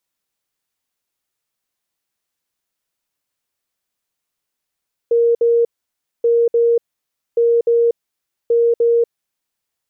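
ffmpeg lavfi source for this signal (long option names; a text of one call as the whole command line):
ffmpeg -f lavfi -i "aevalsrc='0.299*sin(2*PI*468*t)*clip(min(mod(mod(t,1.13),0.3),0.24-mod(mod(t,1.13),0.3))/0.005,0,1)*lt(mod(t,1.13),0.6)':duration=4.52:sample_rate=44100" out.wav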